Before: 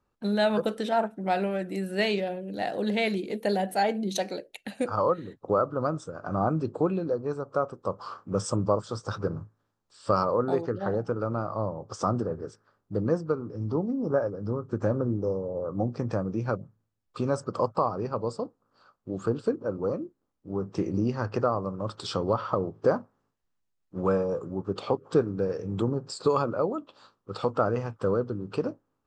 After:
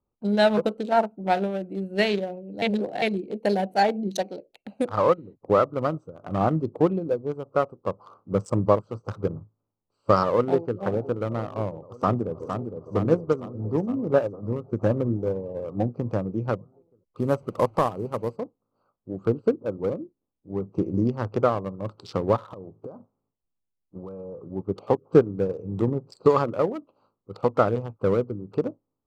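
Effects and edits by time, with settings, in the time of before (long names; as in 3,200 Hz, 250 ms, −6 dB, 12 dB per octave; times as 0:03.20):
0:02.62–0:03.02: reverse
0:10.26–0:10.79: delay throw 520 ms, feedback 85%, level −13 dB
0:11.84–0:12.44: delay throw 460 ms, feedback 65%, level −4.5 dB
0:17.18–0:18.36: linear delta modulator 64 kbit/s, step −40.5 dBFS
0:22.43–0:24.39: downward compressor 20 to 1, threshold −31 dBFS
whole clip: adaptive Wiener filter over 25 samples; expander for the loud parts 1.5 to 1, over −41 dBFS; level +7.5 dB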